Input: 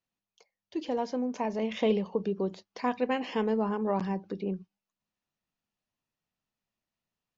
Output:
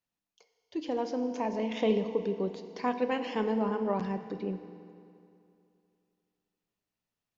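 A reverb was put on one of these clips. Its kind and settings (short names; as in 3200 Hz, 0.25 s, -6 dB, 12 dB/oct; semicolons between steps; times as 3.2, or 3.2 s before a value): FDN reverb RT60 2.6 s, high-frequency decay 0.85×, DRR 8 dB; gain -1.5 dB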